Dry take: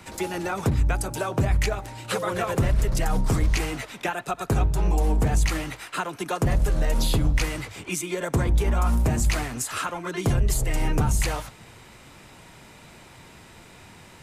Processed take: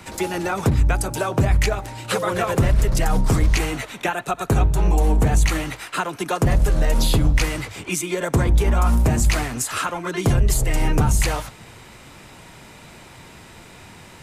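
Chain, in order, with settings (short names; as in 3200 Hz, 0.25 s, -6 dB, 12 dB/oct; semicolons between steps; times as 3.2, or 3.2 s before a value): 3.57–5.66 notch 5000 Hz, Q 9.7; gain +4.5 dB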